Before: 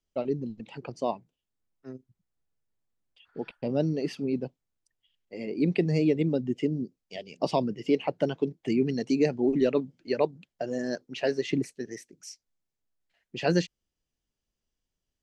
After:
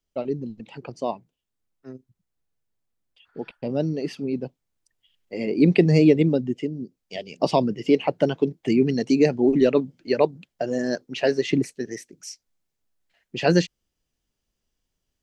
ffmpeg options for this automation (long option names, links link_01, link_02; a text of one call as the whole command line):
ffmpeg -i in.wav -af "volume=17.5dB,afade=type=in:start_time=4.37:duration=1.05:silence=0.473151,afade=type=out:start_time=6.09:duration=0.65:silence=0.266073,afade=type=in:start_time=6.74:duration=0.41:silence=0.354813" out.wav